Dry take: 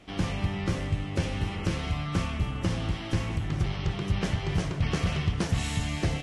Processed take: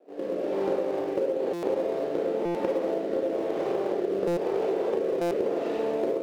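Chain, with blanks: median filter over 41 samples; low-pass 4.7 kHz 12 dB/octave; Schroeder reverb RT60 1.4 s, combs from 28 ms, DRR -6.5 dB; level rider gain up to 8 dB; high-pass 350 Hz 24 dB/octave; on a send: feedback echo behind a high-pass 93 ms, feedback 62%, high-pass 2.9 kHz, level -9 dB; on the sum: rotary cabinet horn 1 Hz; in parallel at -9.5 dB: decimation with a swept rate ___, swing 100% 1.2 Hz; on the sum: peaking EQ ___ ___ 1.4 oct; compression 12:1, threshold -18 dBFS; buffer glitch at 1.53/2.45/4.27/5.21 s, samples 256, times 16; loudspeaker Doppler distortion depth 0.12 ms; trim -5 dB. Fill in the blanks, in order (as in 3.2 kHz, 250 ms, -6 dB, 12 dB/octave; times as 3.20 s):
21×, 500 Hz, +14.5 dB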